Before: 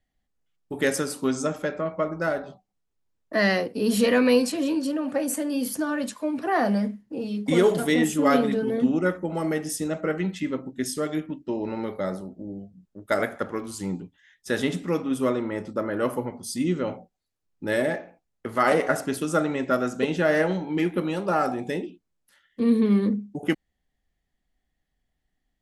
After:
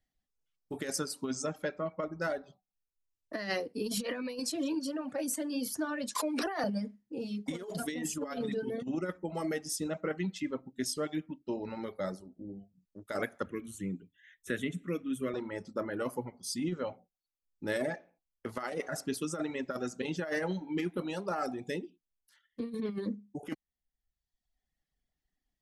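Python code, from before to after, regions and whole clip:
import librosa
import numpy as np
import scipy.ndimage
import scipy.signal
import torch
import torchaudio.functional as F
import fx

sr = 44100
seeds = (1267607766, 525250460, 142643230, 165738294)

y = fx.chain(x, sr, fx.highpass(hz=270.0, slope=24),
    fx.high_shelf(hz=2200.0, db=6.0),
    fx.pre_swell(db_per_s=30.0), at=(6.15, 6.64))
y = fx.chain(y, sr, fx.fixed_phaser(hz=2100.0, stages=4),
    fx.band_squash(depth_pct=40), at=(13.46, 15.34))
y = fx.dereverb_blind(y, sr, rt60_s=1.0)
y = fx.peak_eq(y, sr, hz=5300.0, db=5.5, octaves=0.82)
y = fx.over_compress(y, sr, threshold_db=-24.0, ratio=-0.5)
y = y * librosa.db_to_amplitude(-8.0)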